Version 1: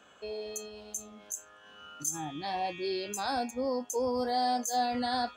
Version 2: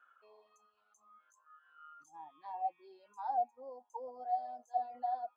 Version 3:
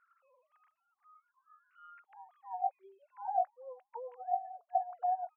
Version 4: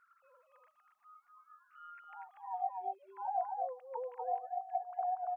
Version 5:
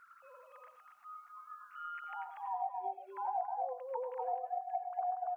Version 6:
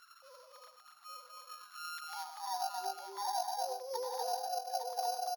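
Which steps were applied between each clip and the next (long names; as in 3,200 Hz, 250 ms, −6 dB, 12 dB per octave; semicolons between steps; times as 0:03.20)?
envelope filter 660–1,400 Hz, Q 11, down, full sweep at −26 dBFS; reverb reduction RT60 1.8 s; level +2.5 dB
three sine waves on the formant tracks; level +2 dB
downward compressor 2 to 1, threshold −40 dBFS, peak gain reduction 8.5 dB; single-tap delay 239 ms −3 dB; level +3 dB
downward compressor 2 to 1, threshold −51 dBFS, peak gain reduction 11.5 dB; on a send at −8 dB: convolution reverb RT60 0.20 s, pre-delay 87 ms; on the sum: level +9 dB
samples sorted by size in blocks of 8 samples; single-tap delay 858 ms −6.5 dB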